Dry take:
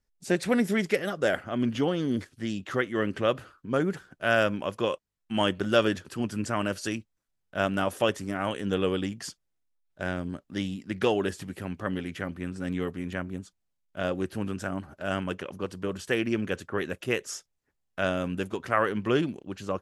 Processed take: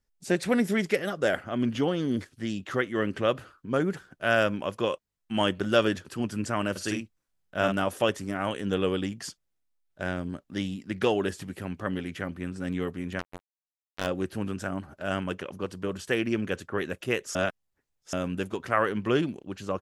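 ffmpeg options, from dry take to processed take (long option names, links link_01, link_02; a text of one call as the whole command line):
ffmpeg -i in.wav -filter_complex "[0:a]asplit=3[link_01][link_02][link_03];[link_01]afade=type=out:start_time=6.75:duration=0.02[link_04];[link_02]asplit=2[link_05][link_06];[link_06]adelay=48,volume=-4dB[link_07];[link_05][link_07]amix=inputs=2:normalize=0,afade=type=in:start_time=6.75:duration=0.02,afade=type=out:start_time=7.71:duration=0.02[link_08];[link_03]afade=type=in:start_time=7.71:duration=0.02[link_09];[link_04][link_08][link_09]amix=inputs=3:normalize=0,asettb=1/sr,asplit=3[link_10][link_11][link_12];[link_10]atrim=end=13.194[link_13];[link_11]atrim=start=13.19:end=14.07,asetpts=PTS-STARTPTS,afade=type=in:duration=0.004:curve=qsin,afade=type=out:start_time=0.876:duration=0.004:curve=qsin,acrusher=bits=3:mix=0:aa=0.5[link_14];[link_12]atrim=start=14.066[link_15];[link_13][link_14]acrossfade=duration=0.004:curve1=hsin:curve2=qsin[link_16];[link_16][link_15]acrossfade=duration=0.004:curve1=qsin:curve2=hsin,asplit=3[link_17][link_18][link_19];[link_17]atrim=end=17.352[link_20];[link_18]atrim=start=17.348:end=18.132,asetpts=PTS-STARTPTS,areverse[link_21];[link_19]atrim=start=18.128[link_22];[link_20][link_21]acrossfade=duration=0.004:curve1=hsin:curve2=hsin[link_23];[link_23][link_22]acrossfade=duration=0.004:curve1=hsin:curve2=hsin" out.wav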